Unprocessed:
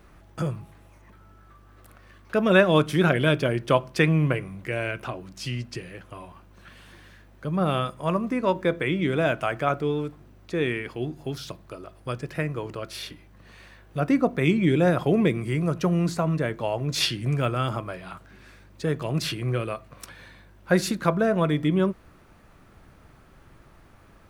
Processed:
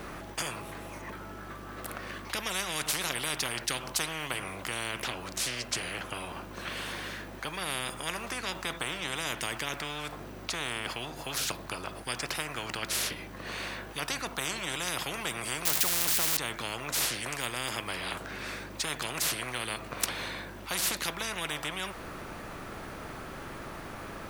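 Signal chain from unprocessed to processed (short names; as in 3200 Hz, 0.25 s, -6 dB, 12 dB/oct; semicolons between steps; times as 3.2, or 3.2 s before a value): 15.65–16.37 switching spikes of -18 dBFS; spectral compressor 10:1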